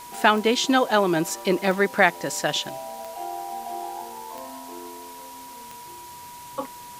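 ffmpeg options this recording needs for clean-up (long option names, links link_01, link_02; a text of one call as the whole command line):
ffmpeg -i in.wav -af "adeclick=threshold=4,bandreject=frequency=970:width=30,afwtdn=0.0056" out.wav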